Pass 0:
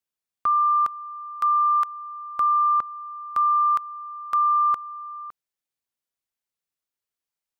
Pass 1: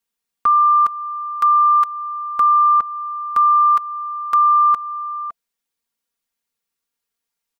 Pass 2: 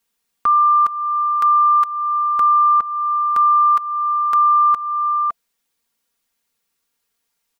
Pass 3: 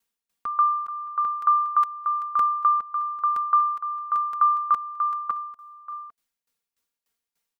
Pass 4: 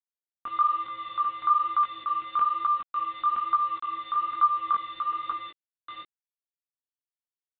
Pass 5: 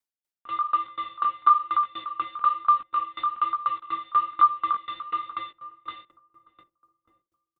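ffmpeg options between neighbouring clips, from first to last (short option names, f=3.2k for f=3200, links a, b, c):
-filter_complex "[0:a]bandreject=f=670:w=12,aecho=1:1:4.3:0.76,asplit=2[a][b];[b]acompressor=threshold=-24dB:ratio=6,volume=-1.5dB[c];[a][c]amix=inputs=2:normalize=0"
-af "alimiter=limit=-18dB:level=0:latency=1:release=330,volume=8dB"
-af "aecho=1:1:620|796:0.112|0.355,aeval=exprs='val(0)*pow(10,-18*if(lt(mod(3.4*n/s,1),2*abs(3.4)/1000),1-mod(3.4*n/s,1)/(2*abs(3.4)/1000),(mod(3.4*n/s,1)-2*abs(3.4)/1000)/(1-2*abs(3.4)/1000))/20)':c=same,volume=-2.5dB"
-af "aresample=8000,aeval=exprs='val(0)*gte(abs(val(0)),0.0168)':c=same,aresample=44100,flanger=delay=17:depth=5.4:speed=1.1"
-filter_complex "[0:a]asplit=2[a][b];[b]adelay=585,lowpass=f=800:p=1,volume=-10dB,asplit=2[c][d];[d]adelay=585,lowpass=f=800:p=1,volume=0.43,asplit=2[e][f];[f]adelay=585,lowpass=f=800:p=1,volume=0.43,asplit=2[g][h];[h]adelay=585,lowpass=f=800:p=1,volume=0.43,asplit=2[i][j];[j]adelay=585,lowpass=f=800:p=1,volume=0.43[k];[a][c][e][g][i][k]amix=inputs=6:normalize=0,aeval=exprs='val(0)*pow(10,-24*if(lt(mod(4.1*n/s,1),2*abs(4.1)/1000),1-mod(4.1*n/s,1)/(2*abs(4.1)/1000),(mod(4.1*n/s,1)-2*abs(4.1)/1000)/(1-2*abs(4.1)/1000))/20)':c=same,volume=9dB"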